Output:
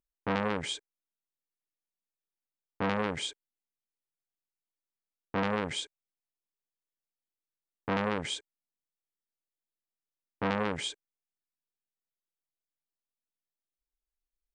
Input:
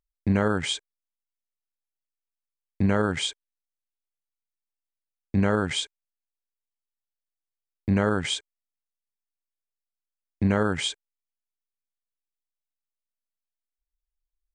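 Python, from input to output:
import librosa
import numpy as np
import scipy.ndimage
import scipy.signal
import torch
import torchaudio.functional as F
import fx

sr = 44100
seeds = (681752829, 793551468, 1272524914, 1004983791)

y = fx.peak_eq(x, sr, hz=290.0, db=9.5, octaves=2.2)
y = fx.transformer_sat(y, sr, knee_hz=1600.0)
y = y * 10.0 ** (-7.5 / 20.0)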